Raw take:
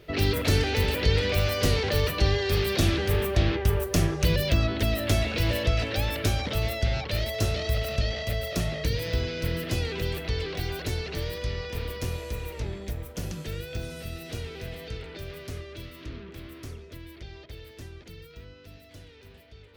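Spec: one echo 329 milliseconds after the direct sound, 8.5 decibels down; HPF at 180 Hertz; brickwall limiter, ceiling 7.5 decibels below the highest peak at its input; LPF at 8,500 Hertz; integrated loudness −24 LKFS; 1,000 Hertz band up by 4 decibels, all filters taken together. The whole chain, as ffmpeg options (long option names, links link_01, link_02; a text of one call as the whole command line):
ffmpeg -i in.wav -af "highpass=180,lowpass=8500,equalizer=frequency=1000:width_type=o:gain=5.5,alimiter=limit=-19dB:level=0:latency=1,aecho=1:1:329:0.376,volume=6dB" out.wav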